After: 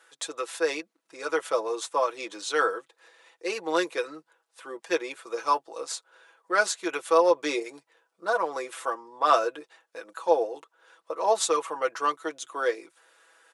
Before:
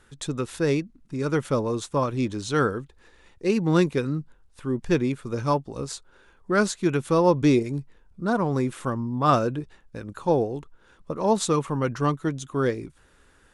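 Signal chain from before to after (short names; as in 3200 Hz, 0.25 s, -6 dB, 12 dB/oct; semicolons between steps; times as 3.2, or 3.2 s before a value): HPF 480 Hz 24 dB/oct; comb 6.1 ms, depth 69%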